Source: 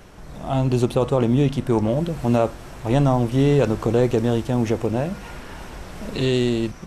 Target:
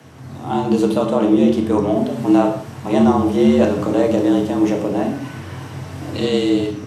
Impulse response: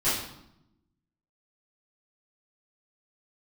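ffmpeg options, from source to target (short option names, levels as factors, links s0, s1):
-filter_complex "[0:a]afreqshift=83,asplit=2[s0][s1];[1:a]atrim=start_sample=2205,afade=t=out:st=0.24:d=0.01,atrim=end_sample=11025,lowshelf=f=85:g=12[s2];[s1][s2]afir=irnorm=-1:irlink=0,volume=0.224[s3];[s0][s3]amix=inputs=2:normalize=0,volume=0.891"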